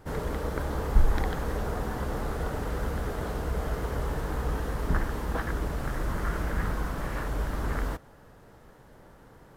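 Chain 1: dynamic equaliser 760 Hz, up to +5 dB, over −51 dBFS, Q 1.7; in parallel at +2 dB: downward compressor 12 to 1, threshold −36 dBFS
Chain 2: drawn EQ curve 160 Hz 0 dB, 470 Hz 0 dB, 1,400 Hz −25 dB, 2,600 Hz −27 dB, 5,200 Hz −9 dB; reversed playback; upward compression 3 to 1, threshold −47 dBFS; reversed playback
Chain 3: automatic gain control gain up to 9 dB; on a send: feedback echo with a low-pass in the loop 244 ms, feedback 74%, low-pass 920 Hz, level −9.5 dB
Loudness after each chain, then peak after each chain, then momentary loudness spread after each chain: −28.5, −33.0, −23.0 LKFS; −6.5, −8.0, −2.0 dBFS; 20, 5, 13 LU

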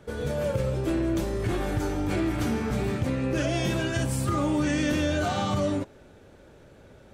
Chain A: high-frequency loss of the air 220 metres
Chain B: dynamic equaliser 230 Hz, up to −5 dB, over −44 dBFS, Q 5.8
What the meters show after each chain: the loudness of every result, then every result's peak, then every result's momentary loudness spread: −28.0, −27.5 LKFS; −14.5, −14.0 dBFS; 3, 3 LU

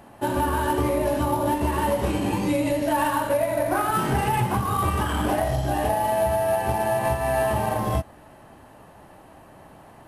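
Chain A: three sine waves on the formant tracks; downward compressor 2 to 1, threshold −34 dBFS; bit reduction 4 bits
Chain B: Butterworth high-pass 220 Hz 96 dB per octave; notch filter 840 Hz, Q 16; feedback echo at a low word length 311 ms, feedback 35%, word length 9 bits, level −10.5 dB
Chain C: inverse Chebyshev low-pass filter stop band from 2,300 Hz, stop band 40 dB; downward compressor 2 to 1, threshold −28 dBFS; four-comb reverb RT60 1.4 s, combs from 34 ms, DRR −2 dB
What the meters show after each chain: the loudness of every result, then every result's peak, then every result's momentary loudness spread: −33.5, −24.5, −24.5 LKFS; −17.0, −12.5, −11.0 dBFS; 16, 3, 3 LU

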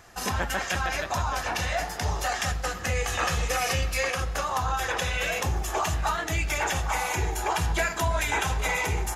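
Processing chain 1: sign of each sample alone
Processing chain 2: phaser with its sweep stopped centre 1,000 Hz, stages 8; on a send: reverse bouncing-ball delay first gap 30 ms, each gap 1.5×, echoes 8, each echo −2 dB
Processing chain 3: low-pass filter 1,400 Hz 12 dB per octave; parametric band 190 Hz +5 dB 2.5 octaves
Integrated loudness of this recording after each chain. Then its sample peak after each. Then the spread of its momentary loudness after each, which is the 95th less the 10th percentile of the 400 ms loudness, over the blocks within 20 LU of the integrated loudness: −26.5, −26.0, −28.5 LKFS; −27.5, −11.5, −12.5 dBFS; 1, 4, 3 LU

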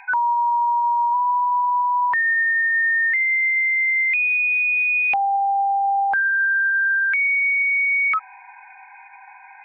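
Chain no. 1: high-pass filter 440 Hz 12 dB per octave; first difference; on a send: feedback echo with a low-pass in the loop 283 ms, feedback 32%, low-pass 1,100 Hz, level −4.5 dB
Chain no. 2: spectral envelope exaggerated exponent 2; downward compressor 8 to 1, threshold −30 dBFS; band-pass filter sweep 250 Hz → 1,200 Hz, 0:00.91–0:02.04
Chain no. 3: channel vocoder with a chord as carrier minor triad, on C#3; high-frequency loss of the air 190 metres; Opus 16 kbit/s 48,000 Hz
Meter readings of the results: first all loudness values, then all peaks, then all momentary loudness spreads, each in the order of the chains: −29.0, −36.5, −21.0 LKFS; −23.0, −27.5, −8.0 dBFS; 12, 17, 3 LU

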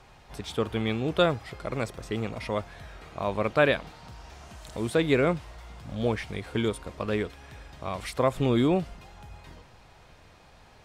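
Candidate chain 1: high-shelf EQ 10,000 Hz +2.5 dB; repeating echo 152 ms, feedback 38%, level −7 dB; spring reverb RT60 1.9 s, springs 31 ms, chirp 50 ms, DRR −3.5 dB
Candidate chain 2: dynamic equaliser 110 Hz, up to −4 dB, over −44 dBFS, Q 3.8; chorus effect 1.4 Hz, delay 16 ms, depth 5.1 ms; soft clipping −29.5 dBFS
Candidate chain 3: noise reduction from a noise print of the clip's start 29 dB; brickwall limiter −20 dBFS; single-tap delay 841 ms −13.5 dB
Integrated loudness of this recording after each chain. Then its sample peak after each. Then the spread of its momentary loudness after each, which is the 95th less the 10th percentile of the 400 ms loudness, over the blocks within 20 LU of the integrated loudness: −23.5, −37.0, −32.5 LKFS; −5.0, −29.5, −18.5 dBFS; 14, 16, 16 LU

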